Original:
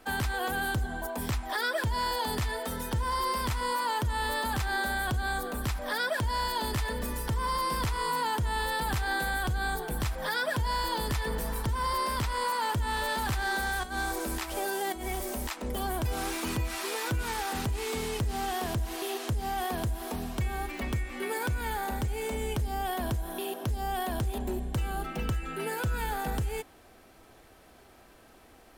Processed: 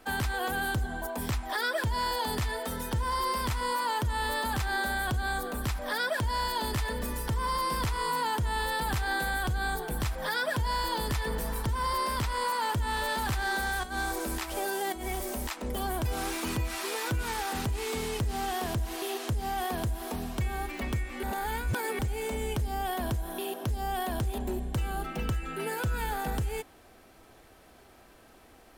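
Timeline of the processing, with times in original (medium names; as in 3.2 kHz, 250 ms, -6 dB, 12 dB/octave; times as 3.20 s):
21.23–21.99 s: reverse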